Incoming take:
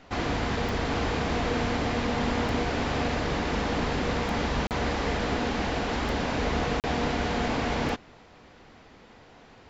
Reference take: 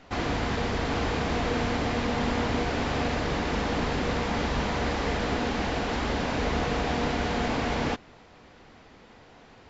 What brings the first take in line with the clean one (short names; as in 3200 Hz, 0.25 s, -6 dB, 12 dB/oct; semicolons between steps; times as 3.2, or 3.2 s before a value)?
de-click; interpolate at 4.67/6.8, 38 ms